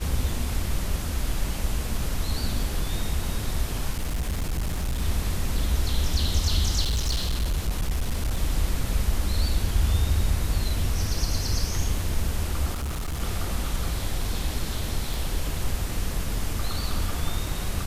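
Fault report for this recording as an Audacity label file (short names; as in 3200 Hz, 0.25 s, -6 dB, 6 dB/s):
3.930000	5.020000	clipped -23 dBFS
6.820000	8.390000	clipped -21 dBFS
12.730000	13.210000	clipped -26 dBFS
15.140000	15.140000	pop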